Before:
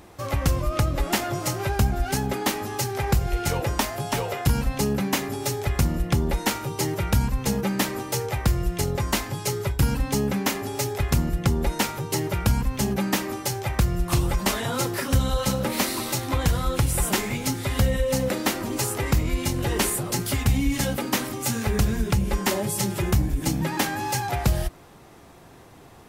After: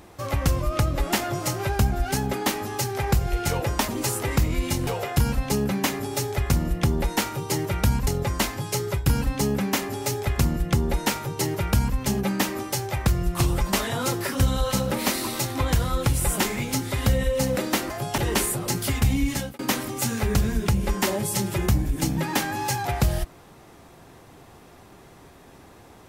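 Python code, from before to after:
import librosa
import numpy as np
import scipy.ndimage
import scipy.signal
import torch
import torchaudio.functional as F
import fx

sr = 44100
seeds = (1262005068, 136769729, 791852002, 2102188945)

y = fx.edit(x, sr, fx.swap(start_s=3.88, length_s=0.28, other_s=18.63, other_length_s=0.99),
    fx.cut(start_s=7.36, length_s=1.44),
    fx.fade_out_span(start_s=20.6, length_s=0.43, curve='qsin'), tone=tone)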